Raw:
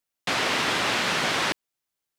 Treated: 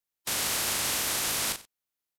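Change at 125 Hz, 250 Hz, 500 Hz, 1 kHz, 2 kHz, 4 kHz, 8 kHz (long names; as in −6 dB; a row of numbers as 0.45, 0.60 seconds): −6.5, −10.0, −10.0, −10.0, −9.5, −4.5, +6.5 decibels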